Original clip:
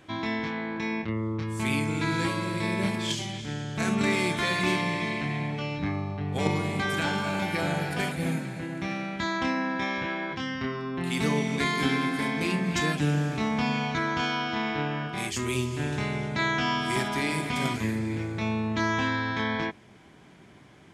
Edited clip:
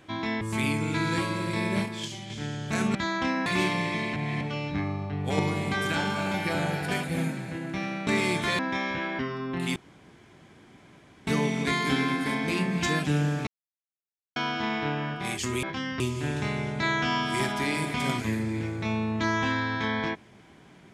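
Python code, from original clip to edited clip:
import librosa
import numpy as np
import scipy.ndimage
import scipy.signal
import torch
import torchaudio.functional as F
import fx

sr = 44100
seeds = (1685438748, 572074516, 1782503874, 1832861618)

y = fx.edit(x, sr, fx.cut(start_s=0.41, length_s=1.07),
    fx.clip_gain(start_s=2.93, length_s=0.44, db=-5.5),
    fx.swap(start_s=4.02, length_s=0.52, other_s=9.15, other_length_s=0.51),
    fx.reverse_span(start_s=5.24, length_s=0.25),
    fx.move(start_s=10.26, length_s=0.37, to_s=15.56),
    fx.insert_room_tone(at_s=11.2, length_s=1.51),
    fx.silence(start_s=13.4, length_s=0.89), tone=tone)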